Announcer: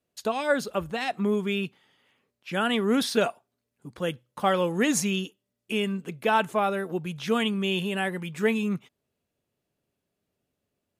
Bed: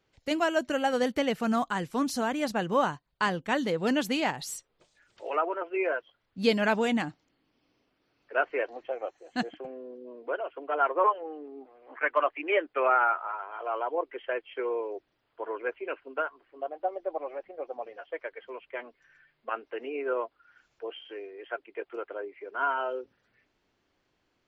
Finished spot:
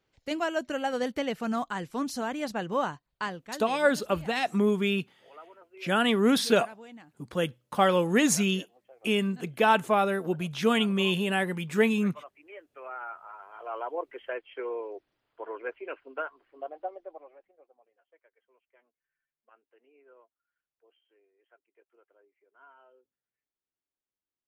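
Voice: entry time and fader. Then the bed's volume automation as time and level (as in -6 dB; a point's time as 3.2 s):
3.35 s, +1.0 dB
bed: 3.12 s -3 dB
3.95 s -21 dB
12.64 s -21 dB
13.8 s -3.5 dB
16.78 s -3.5 dB
17.83 s -28 dB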